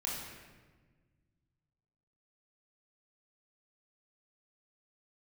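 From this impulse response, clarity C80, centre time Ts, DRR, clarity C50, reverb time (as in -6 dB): 3.0 dB, 80 ms, -4.5 dB, 0.5 dB, 1.4 s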